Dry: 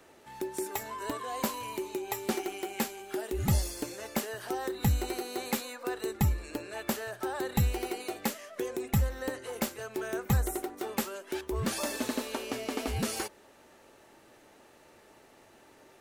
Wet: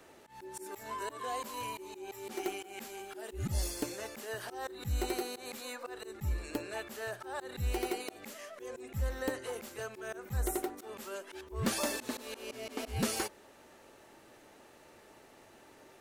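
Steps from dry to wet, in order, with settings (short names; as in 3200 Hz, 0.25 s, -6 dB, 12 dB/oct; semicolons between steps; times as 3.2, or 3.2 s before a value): auto swell 0.159 s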